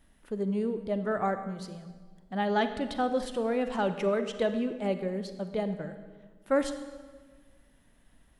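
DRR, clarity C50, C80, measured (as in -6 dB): 9.0 dB, 10.0 dB, 11.5 dB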